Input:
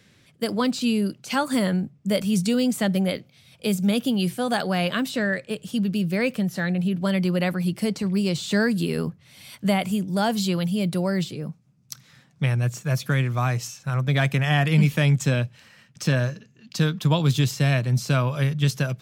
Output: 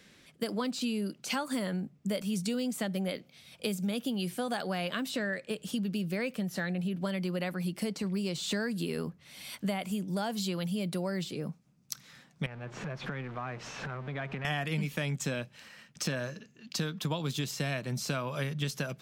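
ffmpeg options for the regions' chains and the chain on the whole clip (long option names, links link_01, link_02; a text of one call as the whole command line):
ffmpeg -i in.wav -filter_complex "[0:a]asettb=1/sr,asplit=3[link_01][link_02][link_03];[link_01]atrim=end=12.464[link_04];[link_02]atrim=start=12.46:end=14.45,asetpts=PTS-STARTPTS,afade=type=in:duration=0.004:curve=qsin,afade=type=out:start_time=1.986:duration=0.004:curve=qsin,aeval=exprs='val(0)+0.5*0.0447*sgn(val(0))':channel_layout=same,lowpass=2200,acompressor=threshold=-34dB:ratio=3:attack=3.2:release=140:knee=1:detection=peak[link_05];[link_03]atrim=start=14.446[link_06];[link_04][link_05]acrossfade=duration=0.004:curve1=hsin:curve2=qsin[link_07];[link_07][link_06]acrossfade=duration=0.004:curve1=qsin:curve2=hsin,equalizer=frequency=110:width_type=o:width=0.68:gain=-14,acompressor=threshold=-31dB:ratio=4" out.wav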